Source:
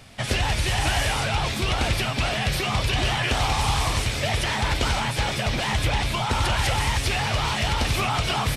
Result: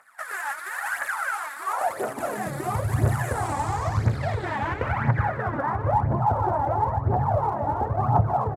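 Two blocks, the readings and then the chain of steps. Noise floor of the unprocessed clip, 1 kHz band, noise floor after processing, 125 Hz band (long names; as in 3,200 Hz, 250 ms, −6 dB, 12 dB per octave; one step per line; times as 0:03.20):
−29 dBFS, +2.0 dB, −36 dBFS, 0.0 dB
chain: running median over 15 samples
flat-topped bell 3,800 Hz −10 dB
low-pass filter sweep 11,000 Hz → 840 Hz, 0:03.24–0:06.08
low-shelf EQ 89 Hz −11.5 dB
single-tap delay 843 ms −18 dB
high-pass filter sweep 1,400 Hz → 100 Hz, 0:01.56–0:02.70
phase shifter 0.98 Hz, delay 3.7 ms, feedback 65%
level −2.5 dB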